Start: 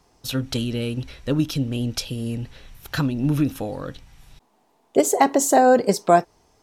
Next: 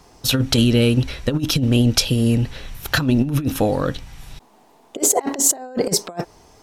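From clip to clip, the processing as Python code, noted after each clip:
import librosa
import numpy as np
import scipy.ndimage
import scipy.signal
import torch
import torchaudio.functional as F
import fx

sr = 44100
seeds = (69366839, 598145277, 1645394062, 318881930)

y = fx.over_compress(x, sr, threshold_db=-24.0, ratio=-0.5)
y = y * 10.0 ** (6.5 / 20.0)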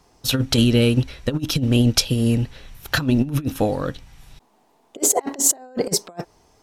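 y = fx.upward_expand(x, sr, threshold_db=-28.0, expansion=1.5)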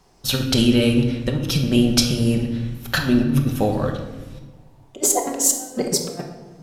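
y = fx.room_shoebox(x, sr, seeds[0], volume_m3=830.0, walls='mixed', distance_m=1.1)
y = y * 10.0 ** (-1.0 / 20.0)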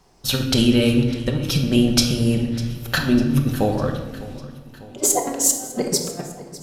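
y = fx.echo_feedback(x, sr, ms=601, feedback_pct=57, wet_db=-18.5)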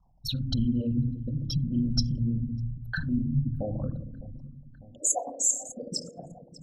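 y = fx.envelope_sharpen(x, sr, power=3.0)
y = fx.fixed_phaser(y, sr, hz=950.0, stages=4)
y = y * 10.0 ** (-5.5 / 20.0)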